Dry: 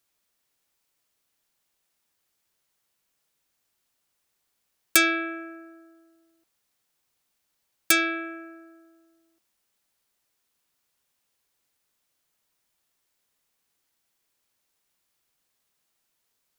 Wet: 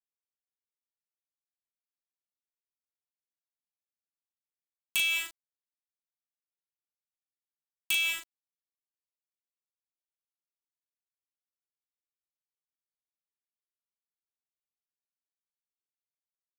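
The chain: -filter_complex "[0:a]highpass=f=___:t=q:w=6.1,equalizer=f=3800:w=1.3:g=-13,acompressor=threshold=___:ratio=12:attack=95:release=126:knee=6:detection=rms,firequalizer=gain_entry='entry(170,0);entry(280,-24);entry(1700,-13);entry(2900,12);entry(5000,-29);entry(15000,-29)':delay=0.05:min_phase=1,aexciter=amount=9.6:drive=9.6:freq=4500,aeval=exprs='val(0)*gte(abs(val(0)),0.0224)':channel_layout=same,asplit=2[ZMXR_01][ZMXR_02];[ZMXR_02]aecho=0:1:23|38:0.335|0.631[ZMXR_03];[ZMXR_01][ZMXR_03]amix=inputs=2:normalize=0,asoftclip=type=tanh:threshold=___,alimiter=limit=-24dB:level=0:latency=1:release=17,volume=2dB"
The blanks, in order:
2900, -23dB, -18.5dB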